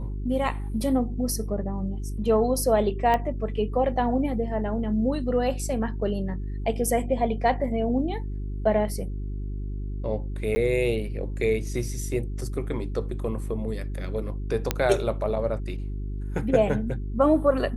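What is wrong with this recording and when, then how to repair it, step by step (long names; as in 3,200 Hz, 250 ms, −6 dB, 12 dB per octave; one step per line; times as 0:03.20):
mains hum 50 Hz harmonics 8 −31 dBFS
0:03.14: click −13 dBFS
0:10.55–0:10.56: drop-out 10 ms
0:14.71: click −7 dBFS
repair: click removal
hum removal 50 Hz, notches 8
repair the gap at 0:10.55, 10 ms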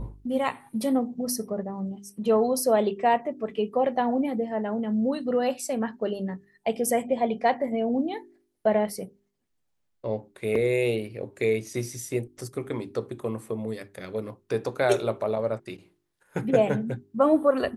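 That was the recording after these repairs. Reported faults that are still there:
0:03.14: click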